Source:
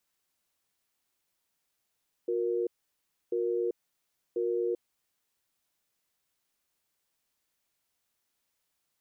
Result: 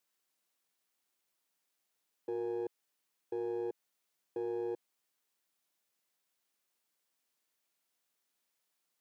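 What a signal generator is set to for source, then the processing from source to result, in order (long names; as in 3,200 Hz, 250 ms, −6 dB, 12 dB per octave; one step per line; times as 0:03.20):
tone pair in a cadence 360 Hz, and 469 Hz, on 0.39 s, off 0.65 s, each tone −29.5 dBFS 2.90 s
gain on one half-wave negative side −7 dB
high-pass filter 190 Hz 12 dB per octave
brickwall limiter −30 dBFS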